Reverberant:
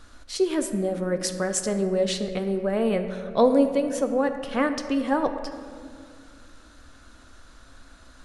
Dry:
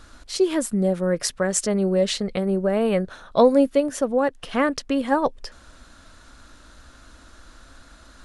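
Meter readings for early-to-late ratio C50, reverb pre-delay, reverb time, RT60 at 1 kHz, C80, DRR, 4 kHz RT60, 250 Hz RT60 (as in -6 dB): 9.0 dB, 3 ms, 2.2 s, 2.0 s, 9.5 dB, 7.0 dB, 1.3 s, 3.0 s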